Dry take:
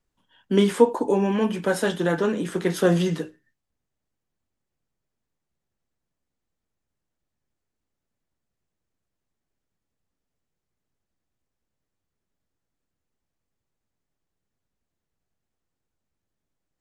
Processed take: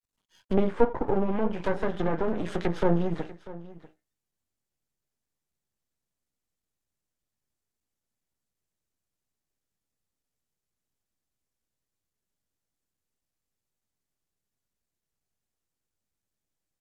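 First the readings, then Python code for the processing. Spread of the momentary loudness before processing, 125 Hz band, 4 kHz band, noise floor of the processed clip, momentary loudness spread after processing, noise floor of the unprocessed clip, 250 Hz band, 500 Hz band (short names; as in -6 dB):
7 LU, -4.5 dB, -13.0 dB, under -85 dBFS, 13 LU, -83 dBFS, -5.5 dB, -5.5 dB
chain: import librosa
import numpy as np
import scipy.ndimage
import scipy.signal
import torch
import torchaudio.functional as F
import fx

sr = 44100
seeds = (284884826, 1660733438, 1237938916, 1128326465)

p1 = np.maximum(x, 0.0)
p2 = fx.noise_reduce_blind(p1, sr, reduce_db=6)
p3 = fx.high_shelf(p2, sr, hz=3800.0, db=9.5)
p4 = fx.env_lowpass_down(p3, sr, base_hz=1100.0, full_db=-21.0)
y = p4 + fx.echo_single(p4, sr, ms=642, db=-18.0, dry=0)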